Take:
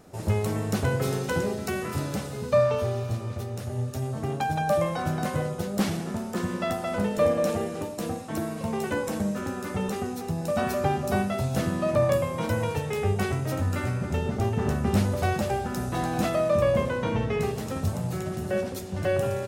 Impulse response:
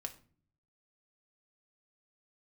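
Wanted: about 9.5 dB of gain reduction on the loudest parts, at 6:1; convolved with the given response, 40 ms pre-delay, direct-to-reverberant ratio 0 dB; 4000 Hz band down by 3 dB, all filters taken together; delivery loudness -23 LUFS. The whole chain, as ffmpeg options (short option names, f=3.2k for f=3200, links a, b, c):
-filter_complex "[0:a]equalizer=f=4k:t=o:g=-4,acompressor=threshold=-28dB:ratio=6,asplit=2[a][b];[1:a]atrim=start_sample=2205,adelay=40[c];[b][c]afir=irnorm=-1:irlink=0,volume=2.5dB[d];[a][d]amix=inputs=2:normalize=0,volume=6.5dB"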